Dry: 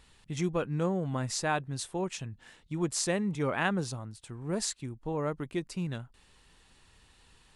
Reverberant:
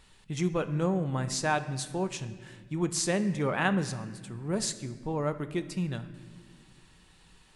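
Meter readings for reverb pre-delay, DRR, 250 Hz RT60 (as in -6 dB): 5 ms, 8.5 dB, 2.9 s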